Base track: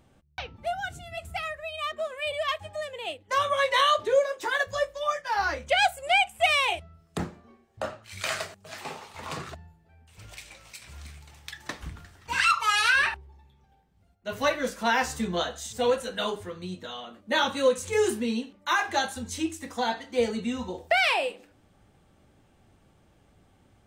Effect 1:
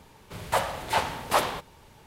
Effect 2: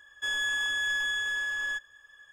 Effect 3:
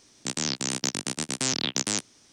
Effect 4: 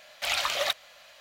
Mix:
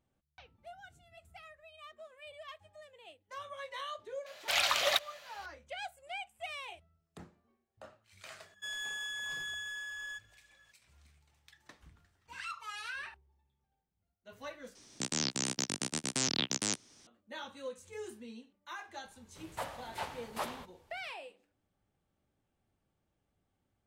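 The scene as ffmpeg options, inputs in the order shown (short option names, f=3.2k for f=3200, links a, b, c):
-filter_complex "[0:a]volume=-20dB[a];[4:a]highpass=65[b];[2:a]highshelf=f=2.7k:g=9[c];[3:a]alimiter=limit=-13.5dB:level=0:latency=1:release=497[d];[a]asplit=2[e][f];[e]atrim=end=14.754[g];[d]atrim=end=2.32,asetpts=PTS-STARTPTS,volume=-0.5dB[h];[f]atrim=start=17.066[i];[b]atrim=end=1.2,asetpts=PTS-STARTPTS,volume=-1.5dB,afade=t=in:d=0.004:c=hsin,afade=t=out:st=1.196:d=0.004:c=hsin,adelay=4260[j];[c]atrim=end=2.32,asetpts=PTS-STARTPTS,volume=-14dB,afade=t=in:d=0.004:c=hsin,afade=t=out:st=2.316:d=0.004:c=hsin,adelay=8400[k];[1:a]atrim=end=2.06,asetpts=PTS-STARTPTS,volume=-14.5dB,afade=t=in:d=0.004:c=hsin,afade=t=out:st=2.056:d=0.004:c=hsin,adelay=19050[l];[g][h]acrossfade=d=0.004:c1=hsin:c2=hsin[m];[m][i]acrossfade=d=0.004:c1=hsin:c2=hsin[n];[n][j][k][l]amix=inputs=4:normalize=0"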